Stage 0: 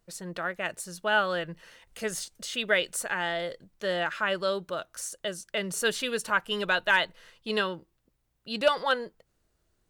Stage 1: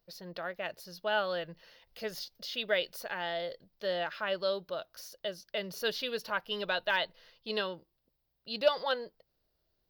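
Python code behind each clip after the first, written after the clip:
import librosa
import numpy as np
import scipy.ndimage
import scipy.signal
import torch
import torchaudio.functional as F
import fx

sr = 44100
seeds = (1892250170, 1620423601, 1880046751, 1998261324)

y = fx.curve_eq(x, sr, hz=(330.0, 600.0, 1300.0, 2400.0, 5000.0, 8000.0, 15000.0), db=(0, 6, -1, 1, 9, -19, 11))
y = F.gain(torch.from_numpy(y), -8.0).numpy()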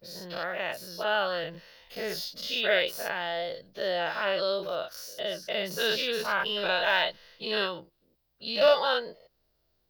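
y = fx.spec_dilate(x, sr, span_ms=120)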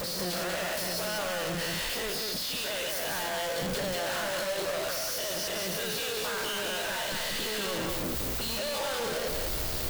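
y = np.sign(x) * np.sqrt(np.mean(np.square(x)))
y = fx.rider(y, sr, range_db=10, speed_s=0.5)
y = y + 10.0 ** (-3.0 / 20.0) * np.pad(y, (int(191 * sr / 1000.0), 0))[:len(y)]
y = F.gain(torch.from_numpy(y), -3.5).numpy()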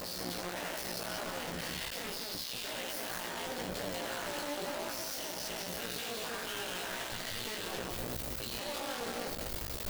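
y = fx.cycle_switch(x, sr, every=2, mode='muted')
y = fx.doubler(y, sr, ms=17.0, db=-4)
y = F.gain(torch.from_numpy(y), -5.5).numpy()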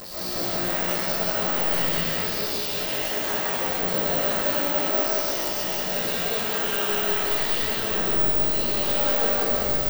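y = x + 10.0 ** (-5.5 / 20.0) * np.pad(x, (int(179 * sr / 1000.0), 0))[:len(x)]
y = fx.rev_freeverb(y, sr, rt60_s=2.2, hf_ratio=0.45, predelay_ms=85, drr_db=-10.0)
y = (np.kron(scipy.signal.resample_poly(y, 1, 2), np.eye(2)[0]) * 2)[:len(y)]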